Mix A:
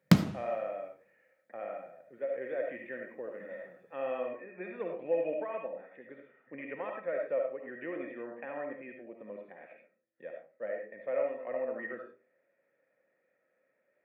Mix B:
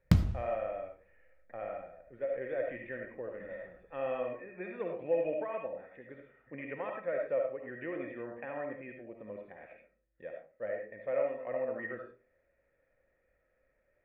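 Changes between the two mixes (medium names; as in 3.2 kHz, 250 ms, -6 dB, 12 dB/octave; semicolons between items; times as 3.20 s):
background -8.5 dB; master: remove high-pass 170 Hz 24 dB/octave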